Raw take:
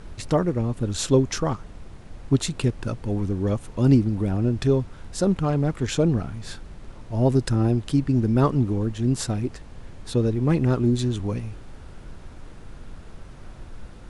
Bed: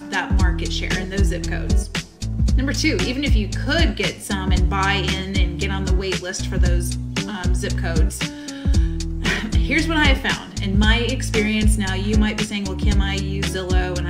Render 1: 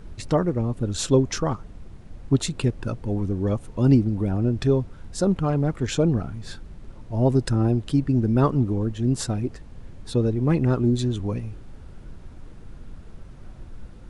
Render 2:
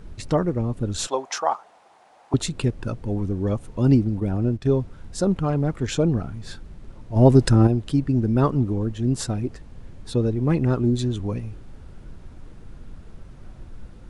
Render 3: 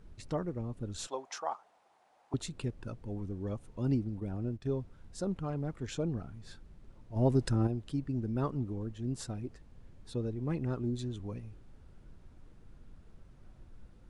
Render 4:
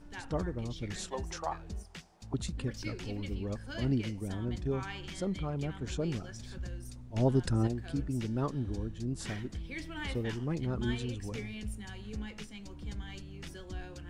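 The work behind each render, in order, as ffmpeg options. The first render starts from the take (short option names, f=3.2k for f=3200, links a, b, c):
-af "afftdn=nr=6:nf=-43"
-filter_complex "[0:a]asettb=1/sr,asplit=3[a][b][c];[a]atrim=end=1.074[d];[b]atrim=start=1.07:end=2.34,asetpts=PTS-STARTPTS,afade=t=in:d=0.004:c=qsin,afade=t=out:st=1.266:d=0.004:c=qsin,highpass=f=780:t=q:w=3.8[e];[c]atrim=start=2.336[f];[d][e]acrossfade=d=0.004:c1=hsin:c2=qsin[g];[g][f]acrossfade=d=0.004:c1=qsin:c2=hsin,asplit=3[h][i][j];[h]afade=t=out:st=4.19:d=0.02[k];[i]agate=range=-11dB:threshold=-26dB:ratio=16:release=100:detection=peak,afade=t=in:st=4.19:d=0.02,afade=t=out:st=4.68:d=0.02[l];[j]afade=t=in:st=4.68:d=0.02[m];[k][l][m]amix=inputs=3:normalize=0,asplit=3[n][o][p];[n]atrim=end=7.162[q];[o]atrim=start=7.158:end=7.672,asetpts=PTS-STARTPTS,volume=6dB[r];[p]atrim=start=7.668[s];[q][r]acrossfade=d=0.004:c1=hsin:c2=hsin[t];[t][s]acrossfade=d=0.004:c1=hsin:c2=hsin"
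-af "volume=-13.5dB"
-filter_complex "[1:a]volume=-23dB[a];[0:a][a]amix=inputs=2:normalize=0"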